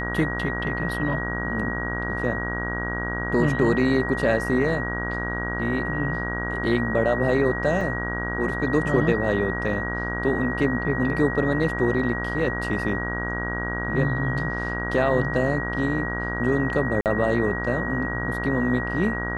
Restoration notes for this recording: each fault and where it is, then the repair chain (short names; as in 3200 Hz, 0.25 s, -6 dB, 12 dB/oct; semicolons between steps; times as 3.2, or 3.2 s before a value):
buzz 60 Hz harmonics 28 -30 dBFS
tone 1900 Hz -29 dBFS
7.81 gap 3 ms
17.01–17.06 gap 48 ms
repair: de-hum 60 Hz, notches 28; notch 1900 Hz, Q 30; interpolate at 7.81, 3 ms; interpolate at 17.01, 48 ms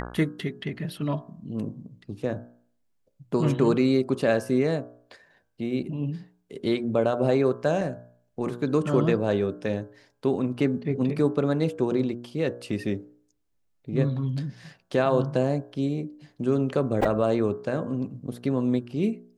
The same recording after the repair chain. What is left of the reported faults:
none